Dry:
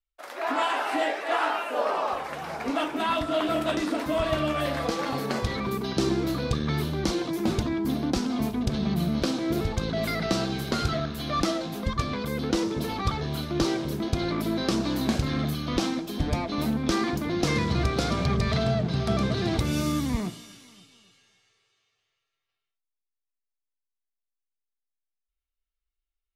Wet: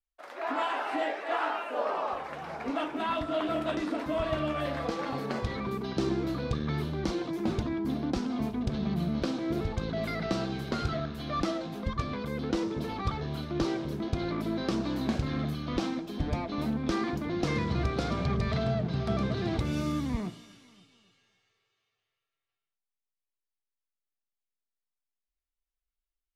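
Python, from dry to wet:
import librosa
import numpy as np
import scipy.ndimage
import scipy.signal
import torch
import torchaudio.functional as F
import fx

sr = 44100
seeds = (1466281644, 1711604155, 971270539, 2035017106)

y = fx.lowpass(x, sr, hz=3000.0, slope=6)
y = y * librosa.db_to_amplitude(-4.0)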